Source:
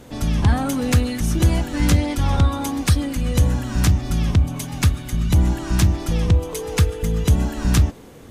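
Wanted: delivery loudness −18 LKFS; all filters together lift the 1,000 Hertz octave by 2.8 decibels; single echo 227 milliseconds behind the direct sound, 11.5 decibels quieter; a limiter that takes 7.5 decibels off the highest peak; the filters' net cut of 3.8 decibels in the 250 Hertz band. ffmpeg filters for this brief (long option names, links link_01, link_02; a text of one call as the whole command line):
ffmpeg -i in.wav -af "equalizer=frequency=250:width_type=o:gain=-5.5,equalizer=frequency=1000:width_type=o:gain=4,alimiter=limit=-13.5dB:level=0:latency=1,aecho=1:1:227:0.266,volume=6dB" out.wav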